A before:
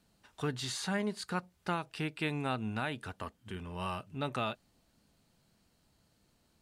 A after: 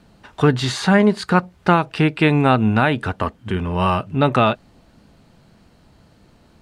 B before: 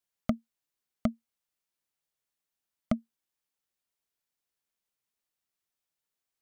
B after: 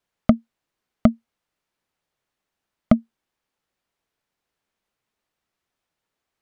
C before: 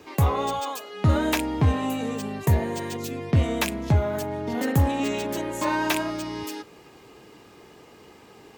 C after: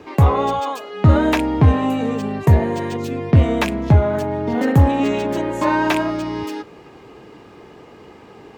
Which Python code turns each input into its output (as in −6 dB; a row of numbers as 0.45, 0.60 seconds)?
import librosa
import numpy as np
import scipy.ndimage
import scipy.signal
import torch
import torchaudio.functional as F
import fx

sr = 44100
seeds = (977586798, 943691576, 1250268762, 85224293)

y = fx.lowpass(x, sr, hz=1900.0, slope=6)
y = y * 10.0 ** (-2 / 20.0) / np.max(np.abs(y))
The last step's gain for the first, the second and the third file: +20.0, +13.0, +8.0 decibels